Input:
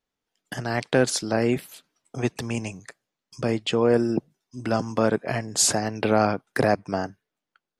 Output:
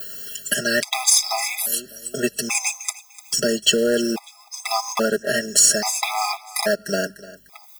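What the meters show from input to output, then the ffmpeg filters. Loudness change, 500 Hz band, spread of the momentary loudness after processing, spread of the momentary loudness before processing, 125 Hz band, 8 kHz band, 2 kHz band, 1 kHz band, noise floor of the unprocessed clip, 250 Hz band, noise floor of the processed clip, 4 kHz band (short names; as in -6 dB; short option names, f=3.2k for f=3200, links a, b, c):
+4.0 dB, 0.0 dB, 15 LU, 14 LU, -10.5 dB, +10.0 dB, +6.0 dB, +1.5 dB, under -85 dBFS, -2.0 dB, -49 dBFS, +10.5 dB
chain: -filter_complex "[0:a]acompressor=mode=upward:threshold=-28dB:ratio=2.5,adynamicequalizer=threshold=0.00631:dfrequency=5900:dqfactor=2.1:tfrequency=5900:tqfactor=2.1:attack=5:release=100:ratio=0.375:range=2.5:mode=boostabove:tftype=bell,aecho=1:1:4.9:0.89,aeval=exprs='val(0)+0.00178*(sin(2*PI*50*n/s)+sin(2*PI*2*50*n/s)/2+sin(2*PI*3*50*n/s)/3+sin(2*PI*4*50*n/s)/4+sin(2*PI*5*50*n/s)/5)':c=same,acompressor=threshold=-19dB:ratio=10,aemphasis=mode=production:type=riaa,acrusher=bits=3:mode=log:mix=0:aa=0.000001,asplit=2[a][b];[b]aecho=0:1:299|598|897:0.112|0.037|0.0122[c];[a][c]amix=inputs=2:normalize=0,alimiter=level_in=7.5dB:limit=-1dB:release=50:level=0:latency=1,afftfilt=real='re*gt(sin(2*PI*0.6*pts/sr)*(1-2*mod(floor(b*sr/1024/660),2)),0)':imag='im*gt(sin(2*PI*0.6*pts/sr)*(1-2*mod(floor(b*sr/1024/660),2)),0)':win_size=1024:overlap=0.75"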